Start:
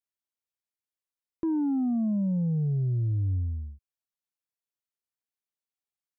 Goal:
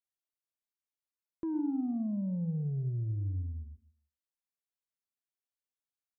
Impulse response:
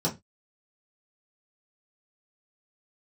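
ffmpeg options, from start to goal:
-filter_complex "[0:a]asettb=1/sr,asplit=3[link_01][link_02][link_03];[link_01]atrim=end=1.594[link_04];[link_02]atrim=start=1.59:end=3.15,asetpts=PTS-STARTPTS,afade=type=in:duration=0.004:curve=qsin,afade=type=out:start_time=1.556:duration=0.004:curve=qsin,lowpass=1200[link_05];[link_03]atrim=start=3.146[link_06];[link_04][link_05]acrossfade=duration=0.004:curve1=hsin:curve2=qsin[link_07];[link_07][link_06]acrossfade=duration=0.004:curve1=qsin:curve2=hsin,aecho=1:1:157|314:0.119|0.0321,asplit=2[link_08][link_09];[1:a]atrim=start_sample=2205,asetrate=83790,aresample=44100,adelay=103[link_10];[link_09][link_10]afir=irnorm=-1:irlink=0,volume=-22.5dB[link_11];[link_08][link_11]amix=inputs=2:normalize=0,volume=-7dB"

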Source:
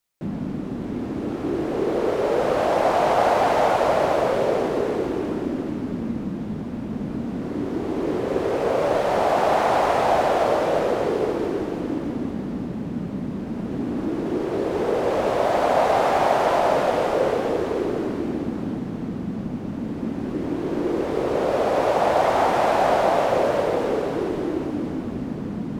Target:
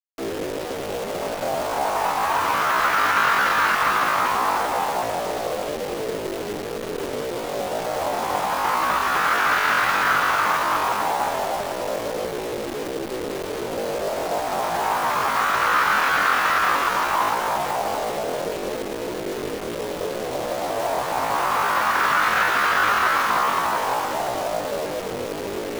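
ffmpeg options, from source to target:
ffmpeg -i in.wav -filter_complex "[0:a]aresample=8000,aresample=44100,acrossover=split=200|420|2200[link_01][link_02][link_03][link_04];[link_04]asoftclip=type=tanh:threshold=-34dB[link_05];[link_01][link_02][link_03][link_05]amix=inputs=4:normalize=0,asetrate=85689,aresample=44100,atempo=0.514651,acrusher=bits=6:dc=4:mix=0:aa=0.000001" out.wav

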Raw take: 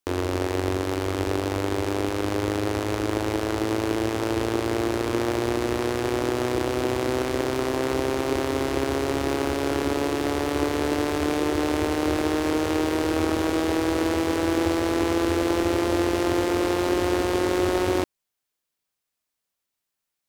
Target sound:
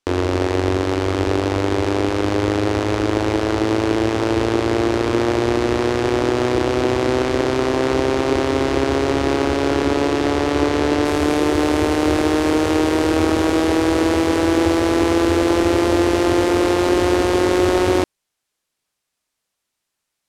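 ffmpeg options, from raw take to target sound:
ffmpeg -i in.wav -af "asetnsamples=nb_out_samples=441:pad=0,asendcmd='11.05 lowpass f 11000',lowpass=6600,acontrast=85" out.wav

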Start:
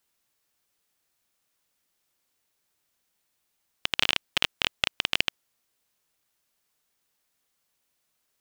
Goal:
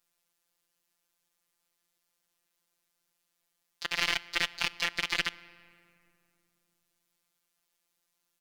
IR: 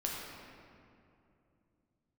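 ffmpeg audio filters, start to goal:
-filter_complex "[0:a]asplit=4[link_01][link_02][link_03][link_04];[link_02]asetrate=29433,aresample=44100,atempo=1.49831,volume=-1dB[link_05];[link_03]asetrate=37084,aresample=44100,atempo=1.18921,volume=-1dB[link_06];[link_04]asetrate=66075,aresample=44100,atempo=0.66742,volume=-5dB[link_07];[link_01][link_05][link_06][link_07]amix=inputs=4:normalize=0,aeval=exprs='(tanh(2.51*val(0)+0.7)-tanh(0.7))/2.51':channel_layout=same,asplit=2[link_08][link_09];[1:a]atrim=start_sample=2205[link_10];[link_09][link_10]afir=irnorm=-1:irlink=0,volume=-18dB[link_11];[link_08][link_11]amix=inputs=2:normalize=0,afftfilt=real='hypot(re,im)*cos(PI*b)':imag='0':win_size=1024:overlap=0.75,volume=-1dB"

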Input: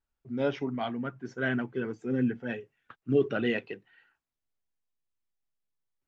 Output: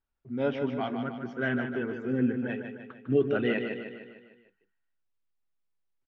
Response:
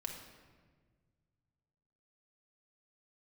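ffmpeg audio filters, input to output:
-filter_complex "[0:a]lowpass=3500,asplit=2[link_01][link_02];[link_02]aecho=0:1:151|302|453|604|755|906:0.447|0.237|0.125|0.0665|0.0352|0.0187[link_03];[link_01][link_03]amix=inputs=2:normalize=0"

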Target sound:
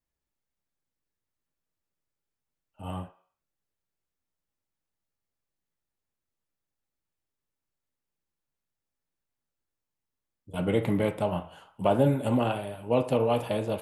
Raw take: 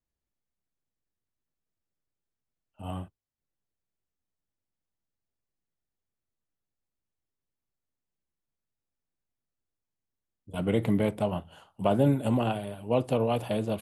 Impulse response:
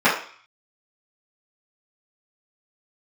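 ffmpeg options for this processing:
-filter_complex "[0:a]asplit=2[link_01][link_02];[1:a]atrim=start_sample=2205,lowshelf=frequency=370:gain=-9.5[link_03];[link_02][link_03]afir=irnorm=-1:irlink=0,volume=-25dB[link_04];[link_01][link_04]amix=inputs=2:normalize=0"

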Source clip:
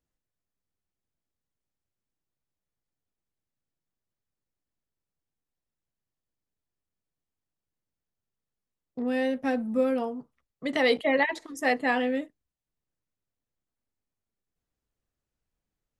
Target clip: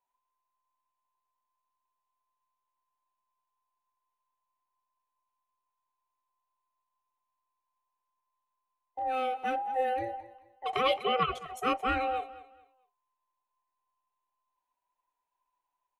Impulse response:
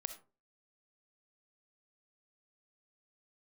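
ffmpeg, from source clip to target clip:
-af "afftfilt=real='real(if(between(b,1,1008),(2*floor((b-1)/48)+1)*48-b,b),0)':imag='imag(if(between(b,1,1008),(2*floor((b-1)/48)+1)*48-b,b),0)*if(between(b,1,1008),-1,1)':win_size=2048:overlap=0.75,equalizer=frequency=125:width_type=o:width=0.33:gain=-9,equalizer=frequency=200:width_type=o:width=0.33:gain=-10,equalizer=frequency=315:width_type=o:width=0.33:gain=-3,equalizer=frequency=500:width_type=o:width=0.33:gain=-3,equalizer=frequency=1000:width_type=o:width=0.33:gain=5,equalizer=frequency=2500:width_type=o:width=0.33:gain=5,equalizer=frequency=5000:width_type=o:width=0.33:gain=-11,equalizer=frequency=8000:width_type=o:width=0.33:gain=-4,aecho=1:1:218|436|654:0.141|0.0396|0.0111,volume=-3.5dB"

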